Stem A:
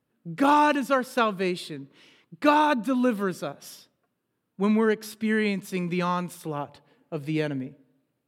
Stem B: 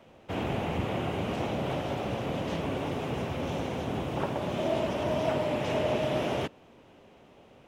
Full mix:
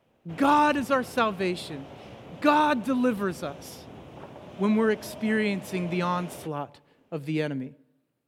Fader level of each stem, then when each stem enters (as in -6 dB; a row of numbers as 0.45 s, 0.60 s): -1.0 dB, -12.5 dB; 0.00 s, 0.00 s